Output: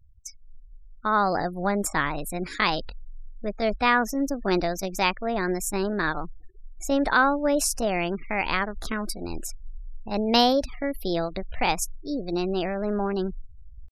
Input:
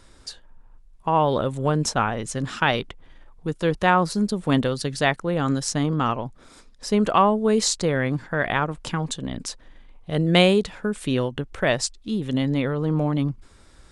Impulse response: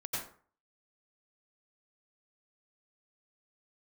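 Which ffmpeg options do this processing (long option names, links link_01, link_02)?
-af "asetrate=58866,aresample=44100,atempo=0.749154,asubboost=boost=6:cutoff=51,afftfilt=real='re*gte(hypot(re,im),0.0126)':imag='im*gte(hypot(re,im),0.0126)':win_size=1024:overlap=0.75,volume=-2.5dB"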